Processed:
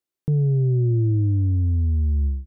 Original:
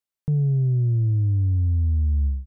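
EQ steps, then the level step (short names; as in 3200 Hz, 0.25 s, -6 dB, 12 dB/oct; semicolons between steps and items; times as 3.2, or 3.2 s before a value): bell 340 Hz +13 dB 0.75 oct; 0.0 dB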